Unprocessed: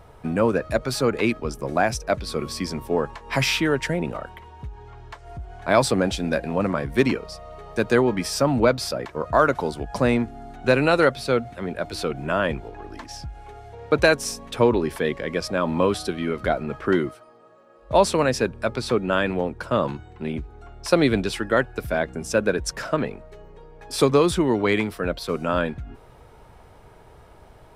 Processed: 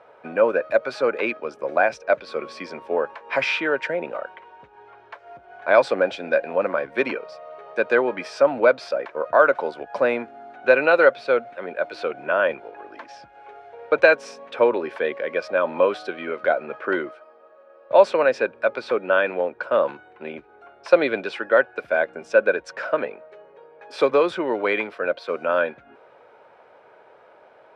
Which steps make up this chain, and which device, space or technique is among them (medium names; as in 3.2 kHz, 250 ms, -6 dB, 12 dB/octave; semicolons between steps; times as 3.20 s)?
tin-can telephone (band-pass 440–2800 Hz; small resonant body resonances 550/1500/2400 Hz, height 8 dB, ringing for 25 ms)